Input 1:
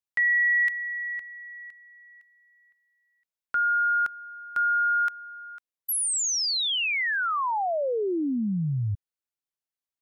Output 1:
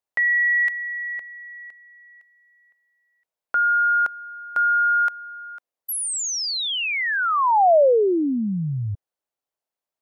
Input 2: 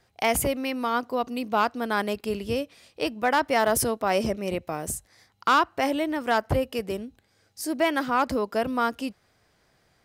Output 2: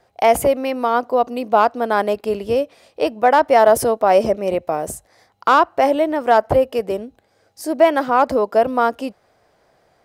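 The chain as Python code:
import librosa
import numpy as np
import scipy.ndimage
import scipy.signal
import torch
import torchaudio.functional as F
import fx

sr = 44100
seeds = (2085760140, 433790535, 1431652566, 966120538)

y = fx.peak_eq(x, sr, hz=630.0, db=12.5, octaves=1.8)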